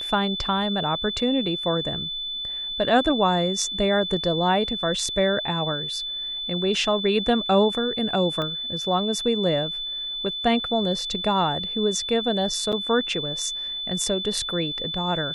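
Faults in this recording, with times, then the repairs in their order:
tone 3500 Hz -28 dBFS
8.42 pop -17 dBFS
12.72–12.73 gap 7 ms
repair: de-click; notch 3500 Hz, Q 30; interpolate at 12.72, 7 ms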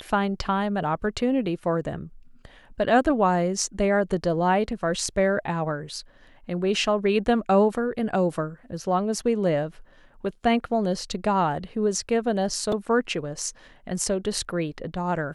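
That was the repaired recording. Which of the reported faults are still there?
8.42 pop

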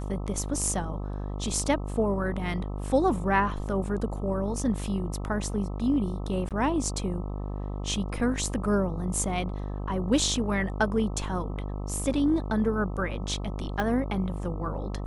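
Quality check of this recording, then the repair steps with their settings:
buzz 50 Hz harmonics 26 -33 dBFS
6.49–6.51 gap 17 ms
13.8 pop -16 dBFS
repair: de-click; de-hum 50 Hz, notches 26; interpolate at 6.49, 17 ms

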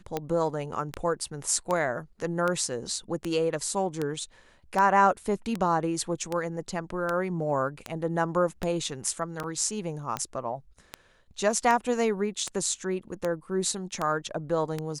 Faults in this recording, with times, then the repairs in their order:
tick 78 rpm -15 dBFS
9.43–9.44 gap 6.5 ms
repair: de-click; interpolate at 9.43, 6.5 ms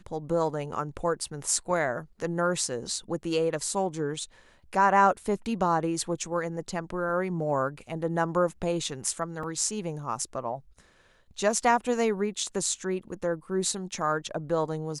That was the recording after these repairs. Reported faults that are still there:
none

